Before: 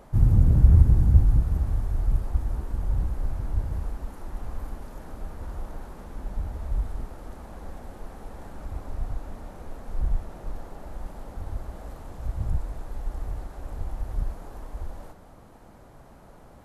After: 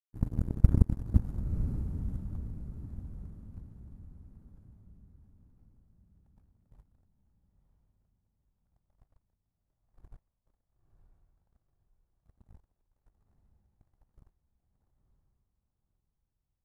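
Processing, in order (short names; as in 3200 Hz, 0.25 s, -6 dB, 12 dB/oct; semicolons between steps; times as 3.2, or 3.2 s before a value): power-law curve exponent 3; diffused feedback echo 0.969 s, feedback 42%, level -8 dB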